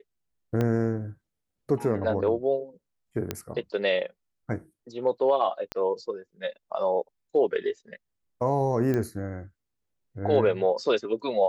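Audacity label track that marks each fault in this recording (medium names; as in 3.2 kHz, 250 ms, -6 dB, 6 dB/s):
0.610000	0.610000	pop -15 dBFS
3.310000	3.310000	pop -13 dBFS
5.720000	5.720000	pop -16 dBFS
8.940000	8.940000	pop -17 dBFS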